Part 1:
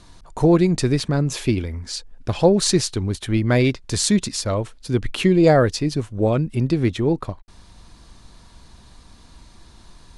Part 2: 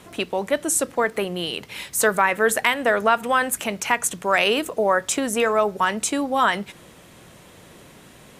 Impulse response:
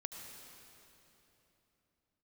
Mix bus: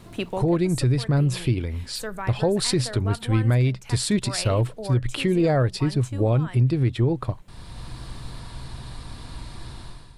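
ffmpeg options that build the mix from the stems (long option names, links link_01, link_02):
-filter_complex "[0:a]equalizer=frequency=125:width_type=o:width=0.33:gain=12,equalizer=frequency=200:width_type=o:width=0.33:gain=-4,equalizer=frequency=6300:width_type=o:width=0.33:gain=-11,dynaudnorm=framelen=170:gausssize=5:maxgain=14dB,volume=-5dB,asplit=2[link_01][link_02];[1:a]equalizer=frequency=120:width_type=o:width=2.3:gain=12.5,acrusher=bits=10:mix=0:aa=0.000001,volume=-6.5dB[link_03];[link_02]apad=whole_len=370094[link_04];[link_03][link_04]sidechaincompress=threshold=-30dB:ratio=3:attack=16:release=1480[link_05];[link_01][link_05]amix=inputs=2:normalize=0,alimiter=limit=-12.5dB:level=0:latency=1:release=161"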